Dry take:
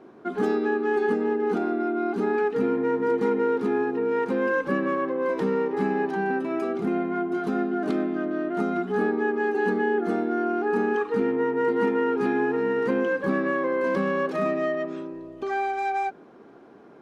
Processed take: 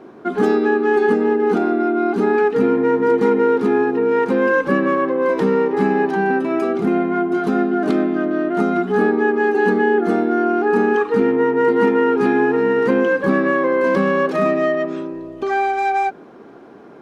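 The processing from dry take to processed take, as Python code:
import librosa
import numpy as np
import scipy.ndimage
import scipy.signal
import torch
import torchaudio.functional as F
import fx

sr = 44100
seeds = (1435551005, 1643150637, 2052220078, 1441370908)

y = x * librosa.db_to_amplitude(8.0)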